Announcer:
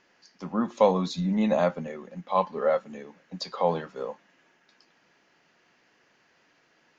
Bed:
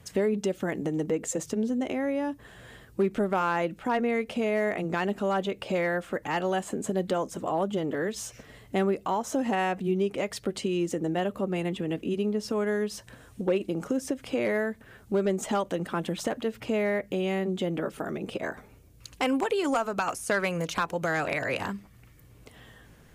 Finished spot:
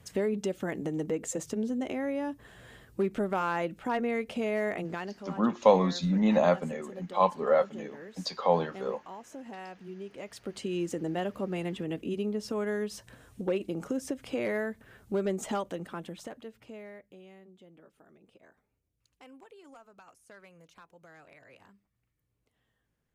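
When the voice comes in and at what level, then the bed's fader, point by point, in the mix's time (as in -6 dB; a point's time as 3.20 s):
4.85 s, 0.0 dB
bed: 4.79 s -3.5 dB
5.32 s -16.5 dB
9.95 s -16.5 dB
10.76 s -4 dB
15.50 s -4 dB
17.50 s -26.5 dB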